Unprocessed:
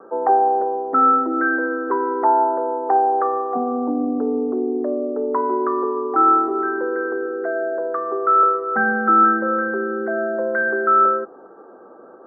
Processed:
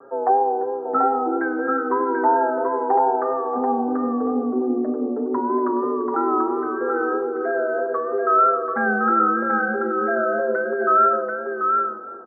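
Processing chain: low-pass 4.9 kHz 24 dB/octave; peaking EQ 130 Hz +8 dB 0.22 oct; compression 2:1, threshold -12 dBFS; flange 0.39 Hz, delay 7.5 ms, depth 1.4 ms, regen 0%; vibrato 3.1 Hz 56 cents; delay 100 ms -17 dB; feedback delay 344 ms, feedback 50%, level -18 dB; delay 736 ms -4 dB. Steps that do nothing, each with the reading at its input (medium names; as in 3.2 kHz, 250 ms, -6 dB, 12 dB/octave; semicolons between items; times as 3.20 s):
low-pass 4.9 kHz: input has nothing above 1.6 kHz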